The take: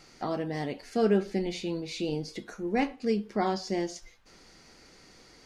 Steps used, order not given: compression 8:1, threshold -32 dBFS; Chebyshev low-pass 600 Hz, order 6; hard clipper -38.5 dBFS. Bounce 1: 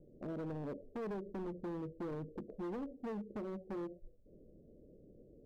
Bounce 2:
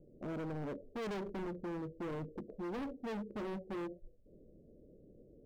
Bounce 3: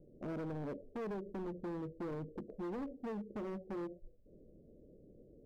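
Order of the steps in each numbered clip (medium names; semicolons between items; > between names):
compression > Chebyshev low-pass > hard clipper; Chebyshev low-pass > hard clipper > compression; Chebyshev low-pass > compression > hard clipper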